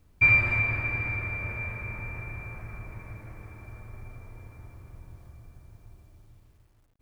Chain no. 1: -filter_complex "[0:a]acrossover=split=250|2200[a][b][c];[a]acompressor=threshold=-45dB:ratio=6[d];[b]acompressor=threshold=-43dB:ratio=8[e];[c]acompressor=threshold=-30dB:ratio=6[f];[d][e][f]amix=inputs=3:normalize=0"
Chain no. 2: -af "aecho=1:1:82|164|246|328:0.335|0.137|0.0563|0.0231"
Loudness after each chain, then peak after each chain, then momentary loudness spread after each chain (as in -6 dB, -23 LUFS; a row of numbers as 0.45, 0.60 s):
-34.0, -24.5 LUFS; -19.0, -9.0 dBFS; 23, 25 LU